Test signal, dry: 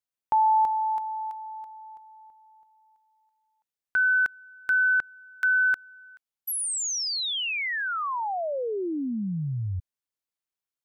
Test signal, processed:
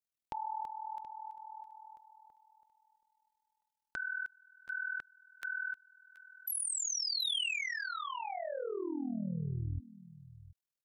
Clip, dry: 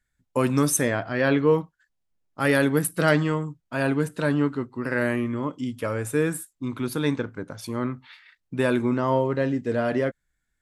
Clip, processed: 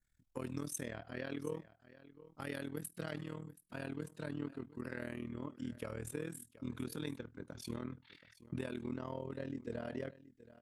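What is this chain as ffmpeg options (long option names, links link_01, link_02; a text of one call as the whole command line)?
ffmpeg -i in.wav -af "acompressor=threshold=-31dB:ratio=6:attack=1.4:release=965:detection=rms,equalizer=frequency=1100:width=0.54:gain=-4.5,aecho=1:1:727:0.133,tremolo=f=40:d=0.889,adynamicequalizer=threshold=0.00126:dfrequency=3200:dqfactor=1.3:tfrequency=3200:tqfactor=1.3:attack=5:release=100:ratio=0.375:range=2:mode=boostabove:tftype=bell,volume=1dB" out.wav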